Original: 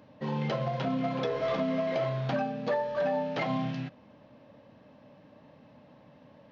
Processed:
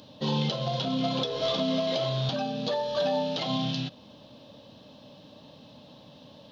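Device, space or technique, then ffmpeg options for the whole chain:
over-bright horn tweeter: -af "highshelf=f=2.7k:t=q:w=3:g=9.5,alimiter=limit=-22.5dB:level=0:latency=1:release=319,volume=4.5dB"

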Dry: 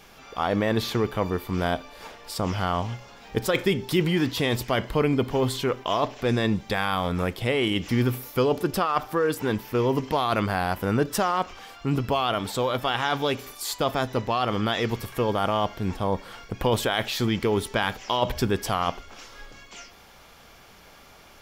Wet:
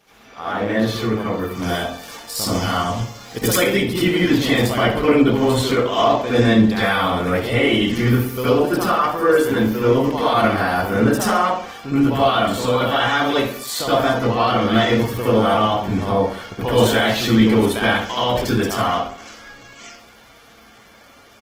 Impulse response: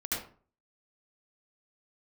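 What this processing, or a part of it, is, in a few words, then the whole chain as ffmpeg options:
far-field microphone of a smart speaker: -filter_complex "[0:a]asplit=3[a][b][c];[a]afade=t=out:st=1.54:d=0.02[d];[b]bass=f=250:g=2,treble=f=4k:g=12,afade=t=in:st=1.54:d=0.02,afade=t=out:st=3.52:d=0.02[e];[c]afade=t=in:st=3.52:d=0.02[f];[d][e][f]amix=inputs=3:normalize=0,aecho=1:1:64|128|192|256:0.251|0.1|0.0402|0.0161[g];[1:a]atrim=start_sample=2205[h];[g][h]afir=irnorm=-1:irlink=0,highpass=f=120:p=1,dynaudnorm=f=590:g=11:m=11.5dB,volume=-1.5dB" -ar 48000 -c:a libopus -b:a 16k

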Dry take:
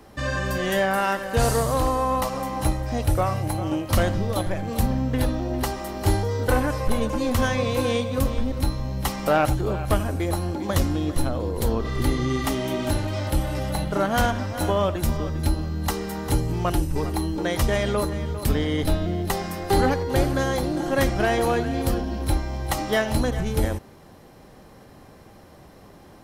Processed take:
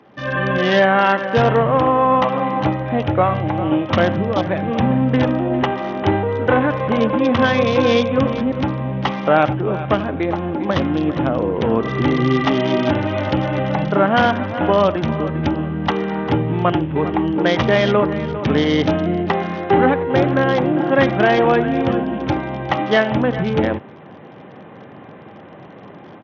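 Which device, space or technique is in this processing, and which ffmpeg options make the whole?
Bluetooth headset: -af "highpass=f=120:w=0.5412,highpass=f=120:w=1.3066,dynaudnorm=f=220:g=3:m=10dB,aresample=8000,aresample=44100" -ar 48000 -c:a sbc -b:a 64k

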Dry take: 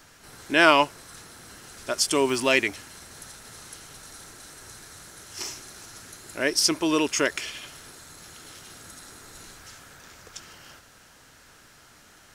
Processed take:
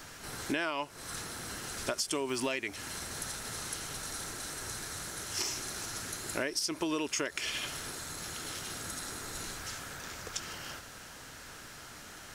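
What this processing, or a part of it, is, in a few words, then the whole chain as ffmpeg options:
serial compression, peaks first: -af "acompressor=threshold=-30dB:ratio=5,acompressor=threshold=-37dB:ratio=2.5,volume=5dB"

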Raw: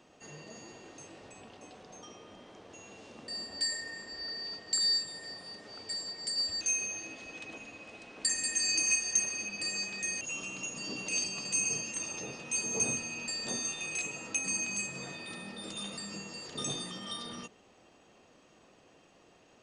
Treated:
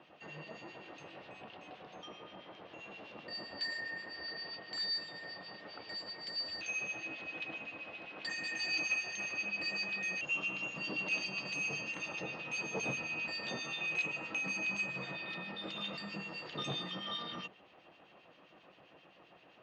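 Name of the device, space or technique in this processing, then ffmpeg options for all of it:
guitar amplifier with harmonic tremolo: -filter_complex "[0:a]acrossover=split=1900[a][b];[a]aeval=exprs='val(0)*(1-0.7/2+0.7/2*cos(2*PI*7.6*n/s))':c=same[c];[b]aeval=exprs='val(0)*(1-0.7/2-0.7/2*cos(2*PI*7.6*n/s))':c=same[d];[c][d]amix=inputs=2:normalize=0,asoftclip=type=tanh:threshold=-28.5dB,highpass=98,equalizer=f=100:t=q:w=4:g=-7,equalizer=f=240:t=q:w=4:g=-9,equalizer=f=420:t=q:w=4:g=-6,equalizer=f=2.8k:t=q:w=4:g=3,lowpass=f=3.8k:w=0.5412,lowpass=f=3.8k:w=1.3066,volume=5.5dB"

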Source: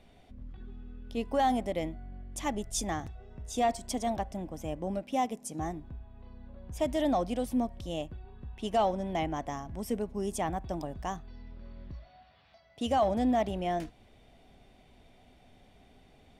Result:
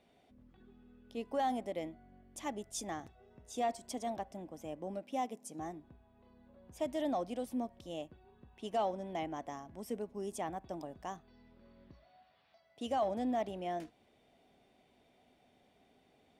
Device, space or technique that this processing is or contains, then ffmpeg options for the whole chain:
filter by subtraction: -filter_complex "[0:a]asplit=2[a][b];[b]lowpass=350,volume=-1[c];[a][c]amix=inputs=2:normalize=0,volume=-8dB"

